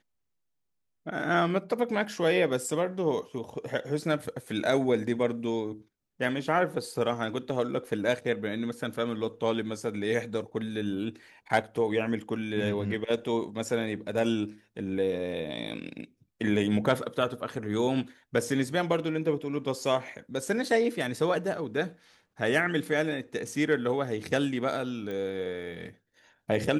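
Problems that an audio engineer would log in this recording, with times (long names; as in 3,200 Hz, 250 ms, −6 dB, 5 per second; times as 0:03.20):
0:25.11: click −25 dBFS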